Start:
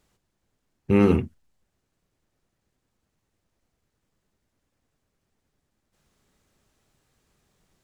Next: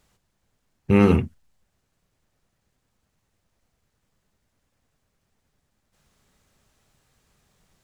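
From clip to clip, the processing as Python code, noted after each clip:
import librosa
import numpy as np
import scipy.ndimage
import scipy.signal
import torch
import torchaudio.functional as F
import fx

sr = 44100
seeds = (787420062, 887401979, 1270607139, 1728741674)

y = fx.peak_eq(x, sr, hz=330.0, db=-5.0, octaves=0.88)
y = y * 10.0 ** (4.0 / 20.0)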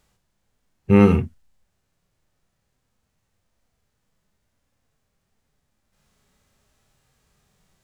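y = fx.hpss(x, sr, part='percussive', gain_db=-16)
y = y * 10.0 ** (4.0 / 20.0)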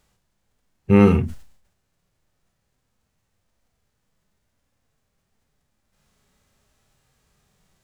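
y = fx.sustainer(x, sr, db_per_s=96.0)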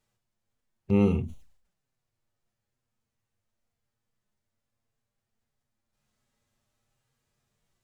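y = fx.env_flanger(x, sr, rest_ms=8.8, full_db=-21.5)
y = y * 10.0 ** (-8.5 / 20.0)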